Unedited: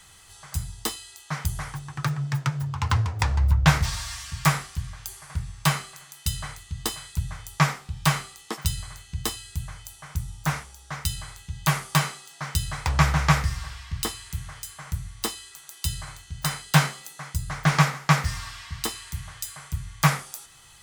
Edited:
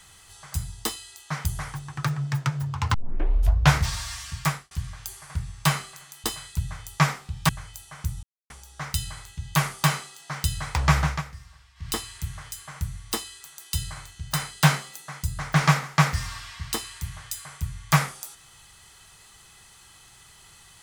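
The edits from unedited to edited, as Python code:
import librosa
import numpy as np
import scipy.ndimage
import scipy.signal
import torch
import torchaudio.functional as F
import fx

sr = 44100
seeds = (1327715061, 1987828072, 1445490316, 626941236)

y = fx.edit(x, sr, fx.tape_start(start_s=2.94, length_s=0.78),
    fx.fade_out_span(start_s=4.32, length_s=0.39),
    fx.cut(start_s=6.24, length_s=0.6),
    fx.cut(start_s=8.09, length_s=1.51),
    fx.silence(start_s=10.34, length_s=0.27),
    fx.fade_down_up(start_s=13.14, length_s=0.91, db=-16.5, fade_s=0.19), tone=tone)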